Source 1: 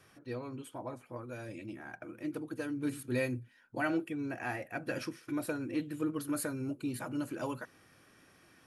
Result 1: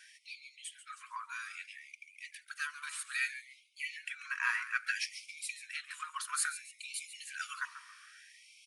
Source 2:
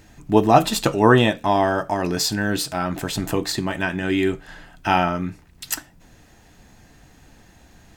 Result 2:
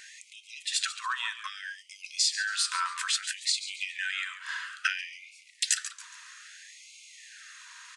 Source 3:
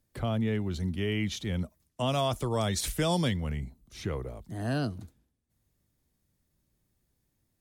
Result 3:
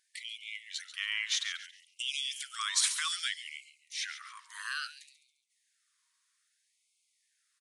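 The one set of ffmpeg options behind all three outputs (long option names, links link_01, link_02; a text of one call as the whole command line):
ffmpeg -i in.wav -filter_complex "[0:a]acompressor=threshold=-30dB:ratio=12,asplit=5[link_01][link_02][link_03][link_04][link_05];[link_02]adelay=139,afreqshift=-150,volume=-12.5dB[link_06];[link_03]adelay=278,afreqshift=-300,volume=-21.6dB[link_07];[link_04]adelay=417,afreqshift=-450,volume=-30.7dB[link_08];[link_05]adelay=556,afreqshift=-600,volume=-39.9dB[link_09];[link_01][link_06][link_07][link_08][link_09]amix=inputs=5:normalize=0,aresample=22050,aresample=44100,afftfilt=real='re*gte(b*sr/1024,910*pow(2100/910,0.5+0.5*sin(2*PI*0.61*pts/sr)))':imag='im*gte(b*sr/1024,910*pow(2100/910,0.5+0.5*sin(2*PI*0.61*pts/sr)))':win_size=1024:overlap=0.75,volume=9dB" out.wav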